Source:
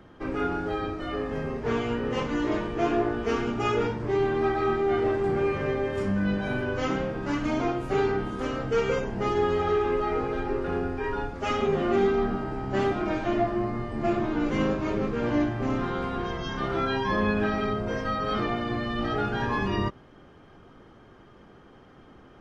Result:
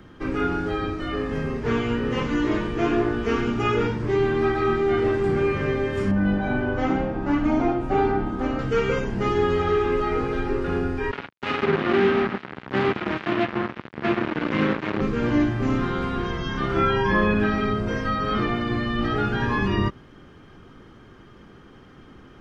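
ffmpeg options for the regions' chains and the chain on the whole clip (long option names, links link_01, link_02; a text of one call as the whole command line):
ffmpeg -i in.wav -filter_complex "[0:a]asettb=1/sr,asplit=3[link_01][link_02][link_03];[link_01]atrim=end=6.114[link_04];[link_02]atrim=start=6.11:end=8.59,asetpts=PTS-STARTPTS,afade=type=in:duration=0.004:curve=qsin,afade=type=out:start_time=2.476:duration=0.004:curve=qsin,lowpass=frequency=1400:poles=1,equalizer=frequency=760:width=5.1:gain=14,aecho=1:1:3.4:0.33,atrim=end_sample=109368[link_05];[link_03]atrim=start=8.586[link_06];[link_04][link_05]acrossfade=duration=0.004:curve1=hsin:curve2=qsin[link_07];[link_07][link_06]acrossfade=duration=0.004:curve1=qsin:curve2=hsin,asettb=1/sr,asplit=3[link_08][link_09][link_10];[link_08]atrim=end=11.114[link_11];[link_09]atrim=start=11.11:end=15.01,asetpts=PTS-STARTPTS,afade=type=in:duration=0.004:curve=qsin,afade=type=out:start_time=3.896:duration=0.004:curve=qsin,bandreject=frequency=60:width_type=h:width=6,bandreject=frequency=120:width_type=h:width=6,bandreject=frequency=180:width_type=h:width=6,bandreject=frequency=240:width_type=h:width=6,bandreject=frequency=300:width_type=h:width=6,bandreject=frequency=360:width_type=h:width=6,bandreject=frequency=420:width_type=h:width=6,bandreject=frequency=480:width_type=h:width=6,bandreject=frequency=540:width_type=h:width=6,bandreject=frequency=600:width_type=h:width=6,acrusher=bits=3:mix=0:aa=0.5,highpass=130,lowpass=3700[link_12];[link_10]atrim=start=15.006[link_13];[link_11][link_12]acrossfade=duration=0.004:curve1=hsin:curve2=qsin[link_14];[link_14][link_13]acrossfade=duration=0.004:curve1=qsin:curve2=hsin,asettb=1/sr,asplit=3[link_15][link_16][link_17];[link_15]atrim=end=16.724[link_18];[link_16]atrim=start=16.72:end=17.34,asetpts=PTS-STARTPTS,afade=type=in:duration=0.004:curve=qsin,afade=type=out:start_time=0.616:duration=0.004:curve=qsin,bandreject=frequency=3900:width=5.1,asplit=2[link_19][link_20];[link_20]adelay=40,volume=-3dB[link_21];[link_19][link_21]amix=inputs=2:normalize=0,atrim=end_sample=27342[link_22];[link_17]atrim=start=17.336[link_23];[link_18][link_22]acrossfade=duration=0.004:curve1=hsin:curve2=qsin[link_24];[link_24][link_23]acrossfade=duration=0.004:curve1=qsin:curve2=hsin,acrossover=split=3200[link_25][link_26];[link_26]acompressor=threshold=-51dB:ratio=4:attack=1:release=60[link_27];[link_25][link_27]amix=inputs=2:normalize=0,equalizer=frequency=680:width_type=o:width=1.2:gain=-7.5,volume=6dB" out.wav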